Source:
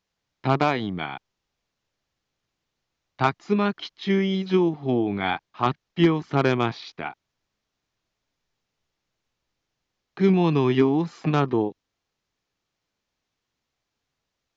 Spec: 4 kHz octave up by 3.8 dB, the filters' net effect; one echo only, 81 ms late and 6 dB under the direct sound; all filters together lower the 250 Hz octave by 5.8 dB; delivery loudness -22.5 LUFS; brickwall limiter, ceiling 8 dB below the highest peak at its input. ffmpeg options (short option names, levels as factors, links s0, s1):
-af "equalizer=f=250:t=o:g=-9,equalizer=f=4000:t=o:g=5,alimiter=limit=0.168:level=0:latency=1,aecho=1:1:81:0.501,volume=2"